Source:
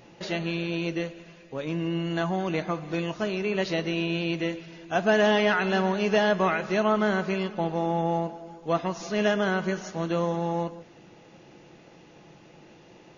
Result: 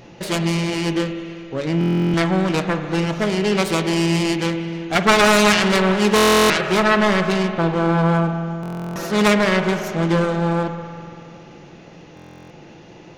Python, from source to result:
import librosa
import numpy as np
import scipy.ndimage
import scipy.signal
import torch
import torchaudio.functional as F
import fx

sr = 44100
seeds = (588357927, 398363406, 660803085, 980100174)

y = fx.self_delay(x, sr, depth_ms=0.48)
y = fx.low_shelf(y, sr, hz=180.0, db=4.5)
y = fx.rev_spring(y, sr, rt60_s=2.7, pass_ms=(48,), chirp_ms=60, drr_db=8.0)
y = fx.buffer_glitch(y, sr, at_s=(1.79, 6.15, 8.61, 12.15), block=1024, repeats=14)
y = y * librosa.db_to_amplitude(7.5)